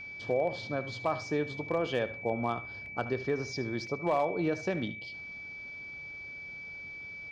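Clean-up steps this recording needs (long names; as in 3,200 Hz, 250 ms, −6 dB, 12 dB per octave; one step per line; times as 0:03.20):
clipped peaks rebuilt −20 dBFS
notch filter 2,300 Hz, Q 30
repair the gap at 0:02.86/0:03.87, 1.8 ms
echo removal 74 ms −15 dB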